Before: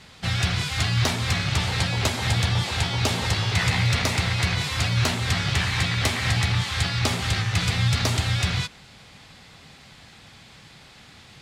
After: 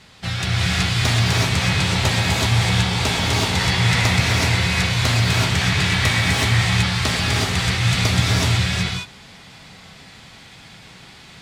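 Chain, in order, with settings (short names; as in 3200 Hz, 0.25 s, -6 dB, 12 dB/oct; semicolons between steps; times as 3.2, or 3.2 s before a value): bell 74 Hz -2 dB; non-linear reverb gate 0.4 s rising, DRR -4 dB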